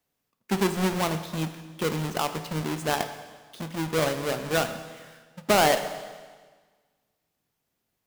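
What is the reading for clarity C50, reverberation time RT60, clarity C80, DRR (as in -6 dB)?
10.0 dB, 1.5 s, 11.5 dB, 8.5 dB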